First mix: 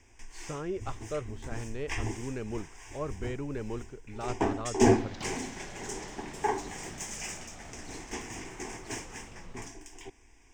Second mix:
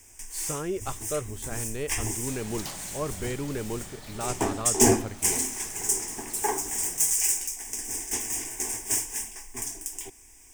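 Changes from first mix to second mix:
speech +3.5 dB
second sound: entry −2.55 s
master: remove high-frequency loss of the air 180 metres

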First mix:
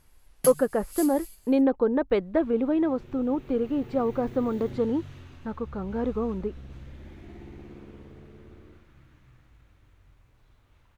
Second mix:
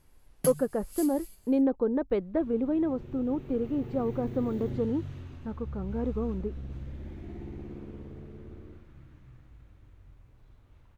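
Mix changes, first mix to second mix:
speech −6.0 dB
master: add tilt shelving filter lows +4.5 dB, about 710 Hz

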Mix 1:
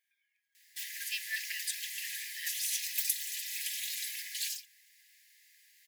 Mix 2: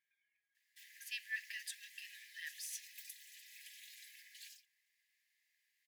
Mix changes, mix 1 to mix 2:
background −10.5 dB
master: add high-shelf EQ 2,700 Hz −11.5 dB

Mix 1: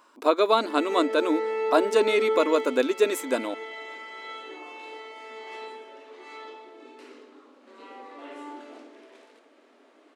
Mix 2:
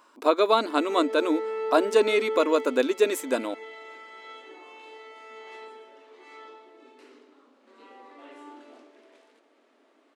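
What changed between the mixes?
background −3.5 dB
reverb: off

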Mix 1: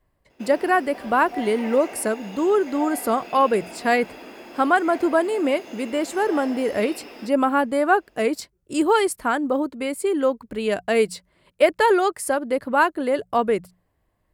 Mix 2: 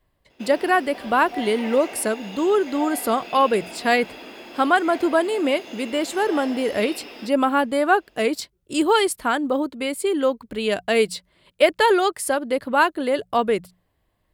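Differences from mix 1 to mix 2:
speech: add high-shelf EQ 11,000 Hz +4 dB
master: add parametric band 3,500 Hz +7.5 dB 0.86 octaves

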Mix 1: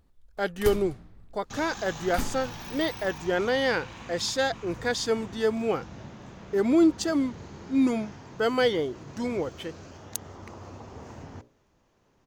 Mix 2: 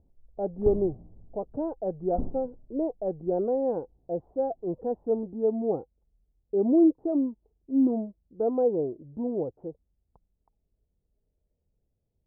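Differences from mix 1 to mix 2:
second sound: muted
master: add Butterworth low-pass 760 Hz 36 dB per octave

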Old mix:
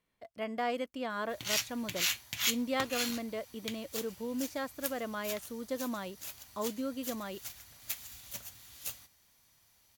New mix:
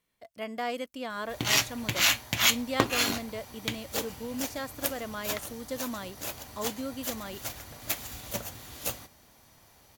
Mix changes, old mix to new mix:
speech: add high-shelf EQ 4,000 Hz +8.5 dB
background: remove guitar amp tone stack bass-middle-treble 5-5-5

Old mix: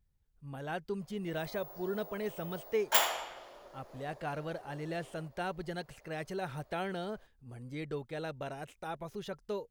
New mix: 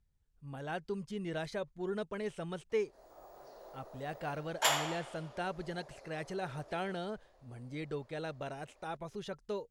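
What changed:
background: entry +1.70 s
master: add Chebyshev low-pass filter 8,400 Hz, order 2

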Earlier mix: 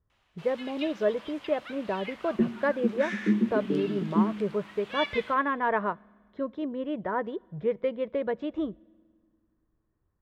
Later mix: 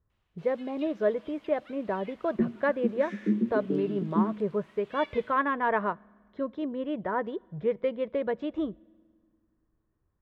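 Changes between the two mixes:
first sound −11.0 dB
second sound: send −9.5 dB

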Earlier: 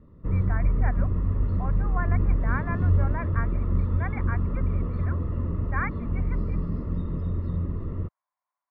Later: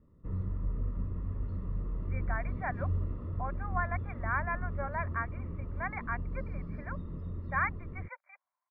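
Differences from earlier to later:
speech: entry +1.80 s
background −11.0 dB

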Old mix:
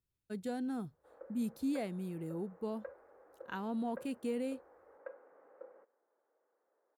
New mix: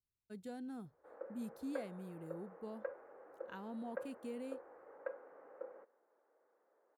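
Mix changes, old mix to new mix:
speech −8.5 dB
background +4.0 dB

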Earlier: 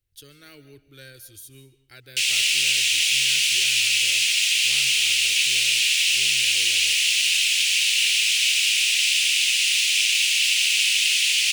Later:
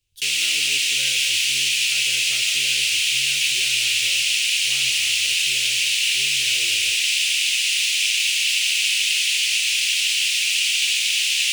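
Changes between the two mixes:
speech: send +10.0 dB
background: entry −1.95 s

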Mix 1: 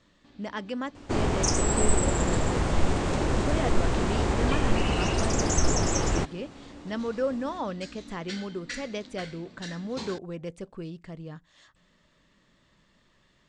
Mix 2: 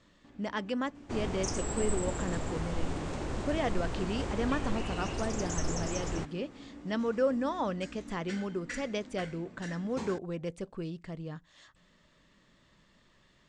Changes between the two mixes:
first sound: add parametric band 4,100 Hz −13.5 dB 0.93 octaves
second sound −10.0 dB

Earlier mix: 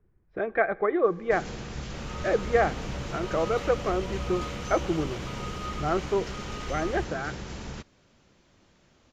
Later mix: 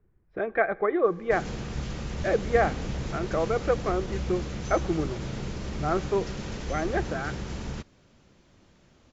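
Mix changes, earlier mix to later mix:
first sound: add low-shelf EQ 410 Hz +4.5 dB
second sound: add Gaussian smoothing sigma 17 samples

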